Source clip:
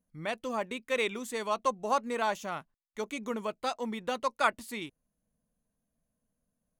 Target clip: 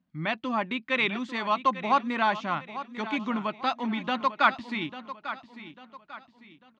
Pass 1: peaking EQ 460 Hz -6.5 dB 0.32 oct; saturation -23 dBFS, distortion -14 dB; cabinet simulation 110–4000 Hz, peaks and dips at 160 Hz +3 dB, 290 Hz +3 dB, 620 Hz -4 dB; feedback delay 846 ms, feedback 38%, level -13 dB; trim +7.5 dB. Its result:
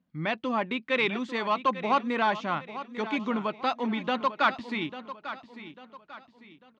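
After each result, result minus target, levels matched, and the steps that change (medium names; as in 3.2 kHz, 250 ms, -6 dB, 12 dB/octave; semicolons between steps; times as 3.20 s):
saturation: distortion +9 dB; 500 Hz band +3.0 dB
change: saturation -16.5 dBFS, distortion -22 dB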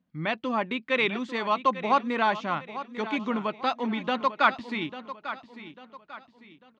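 500 Hz band +3.0 dB
change: peaking EQ 460 Hz -16 dB 0.32 oct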